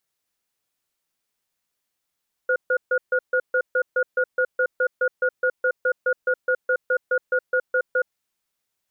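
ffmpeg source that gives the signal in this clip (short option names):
-f lavfi -i "aevalsrc='0.1*(sin(2*PI*509*t)+sin(2*PI*1440*t))*clip(min(mod(t,0.21),0.07-mod(t,0.21))/0.005,0,1)':d=5.54:s=44100"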